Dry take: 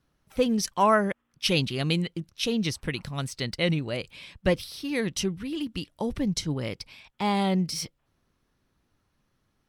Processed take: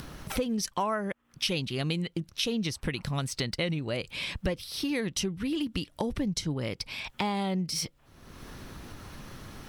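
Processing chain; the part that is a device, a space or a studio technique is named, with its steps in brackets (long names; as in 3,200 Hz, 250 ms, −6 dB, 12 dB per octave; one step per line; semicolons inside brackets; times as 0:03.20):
upward and downward compression (upward compression, threshold −30 dBFS; downward compressor 6 to 1, threshold −33 dBFS, peak gain reduction 15.5 dB)
level +5.5 dB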